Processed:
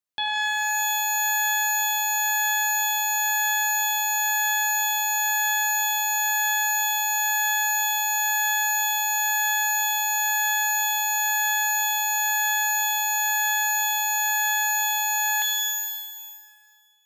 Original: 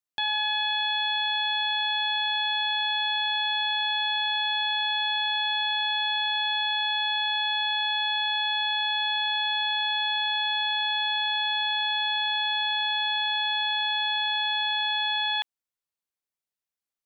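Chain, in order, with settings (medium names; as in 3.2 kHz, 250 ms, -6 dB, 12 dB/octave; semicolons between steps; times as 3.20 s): pitch-shifted reverb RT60 1.9 s, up +12 st, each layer -8 dB, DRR 1.5 dB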